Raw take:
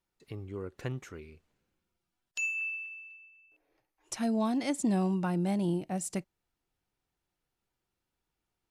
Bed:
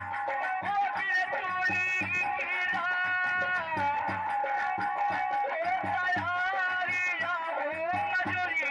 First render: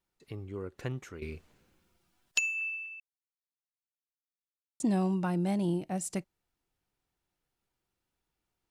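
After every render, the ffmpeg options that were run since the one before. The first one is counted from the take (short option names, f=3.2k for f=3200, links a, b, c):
-filter_complex "[0:a]asplit=5[a][b][c][d][e];[a]atrim=end=1.222[f];[b]atrim=start=1.218:end=2.392,asetpts=PTS-STARTPTS,volume=11.5dB[g];[c]atrim=start=2.388:end=3,asetpts=PTS-STARTPTS,afade=t=out:st=0.608:d=0.004:c=hsin[h];[d]atrim=start=3:end=4.8,asetpts=PTS-STARTPTS,volume=0[i];[e]atrim=start=4.8,asetpts=PTS-STARTPTS,afade=t=in:d=0.004:c=hsin[j];[f][g]acrossfade=d=0.004:c1=hsin:c2=hsin[k];[h][i][j]concat=n=3:v=0:a=1[l];[k][l]acrossfade=d=0.004:c1=hsin:c2=hsin"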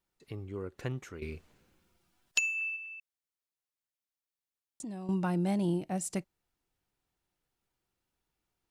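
-filter_complex "[0:a]asettb=1/sr,asplit=3[a][b][c];[a]atrim=end=2.764[d];[b]atrim=start=2.76:end=5.09,asetpts=PTS-STARTPTS,afade=t=in:d=0.004:c=qsin,afade=t=out:st=2.326:d=0.004:c=qsin,acompressor=threshold=-42dB:ratio=3:attack=3.2:release=140:knee=1:detection=peak[e];[c]atrim=start=5.086[f];[d][e]acrossfade=d=0.004:c1=hsin:c2=qsin[g];[g][f]acrossfade=d=0.004:c1=qsin:c2=hsin"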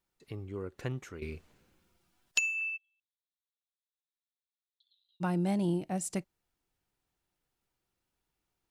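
-filter_complex "[0:a]asplit=3[a][b][c];[a]afade=t=out:st=2.76:d=0.02[d];[b]asuperpass=centerf=3700:order=8:qfactor=4,afade=t=in:st=2.76:d=0.02,afade=t=out:st=5.2:d=0.02[e];[c]afade=t=in:st=5.2:d=0.02[f];[d][e][f]amix=inputs=3:normalize=0"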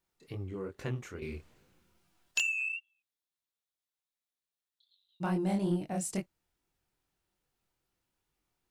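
-filter_complex "[0:a]flanger=delay=20:depth=6.8:speed=2.4,asplit=2[a][b];[b]asoftclip=type=tanh:threshold=-34dB,volume=-4.5dB[c];[a][c]amix=inputs=2:normalize=0"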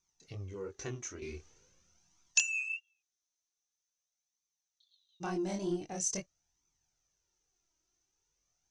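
-af "flanger=delay=0.8:depth=2.4:regen=25:speed=0.45:shape=triangular,lowpass=f=6.1k:t=q:w=14"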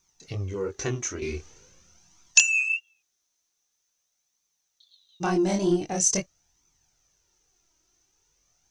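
-af "volume=11.5dB,alimiter=limit=-3dB:level=0:latency=1"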